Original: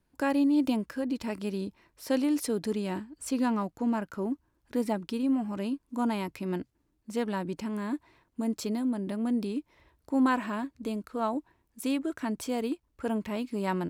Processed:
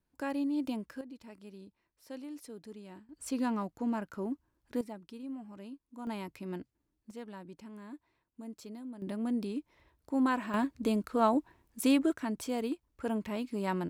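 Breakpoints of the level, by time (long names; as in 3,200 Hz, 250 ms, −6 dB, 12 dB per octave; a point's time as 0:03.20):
−8 dB
from 0:01.01 −17 dB
from 0:03.09 −4.5 dB
from 0:04.81 −14.5 dB
from 0:06.07 −7.5 dB
from 0:07.11 −14.5 dB
from 0:09.02 −4 dB
from 0:10.54 +3.5 dB
from 0:12.12 −3 dB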